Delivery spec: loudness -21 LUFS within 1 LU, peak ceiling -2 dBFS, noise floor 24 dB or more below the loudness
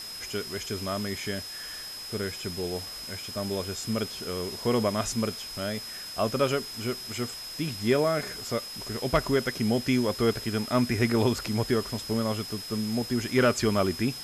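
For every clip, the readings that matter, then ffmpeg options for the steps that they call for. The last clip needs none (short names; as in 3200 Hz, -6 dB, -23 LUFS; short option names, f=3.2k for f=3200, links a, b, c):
steady tone 5100 Hz; tone level -38 dBFS; noise floor -40 dBFS; noise floor target -53 dBFS; loudness -28.5 LUFS; peak -13.0 dBFS; loudness target -21.0 LUFS
-> -af "bandreject=f=5.1k:w=30"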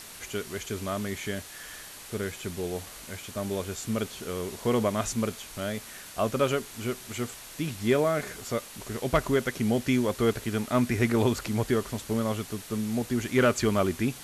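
steady tone none; noise floor -45 dBFS; noise floor target -53 dBFS
-> -af "afftdn=nr=8:nf=-45"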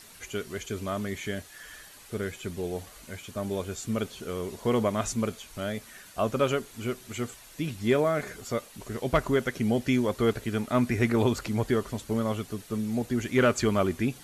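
noise floor -50 dBFS; noise floor target -54 dBFS
-> -af "afftdn=nr=6:nf=-50"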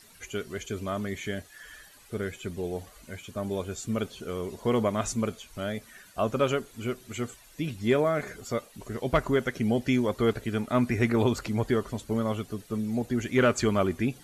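noise floor -54 dBFS; loudness -29.5 LUFS; peak -13.5 dBFS; loudness target -21.0 LUFS
-> -af "volume=8.5dB"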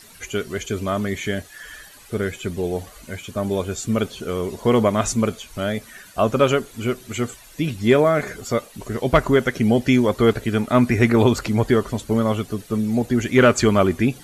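loudness -21.0 LUFS; peak -5.0 dBFS; noise floor -46 dBFS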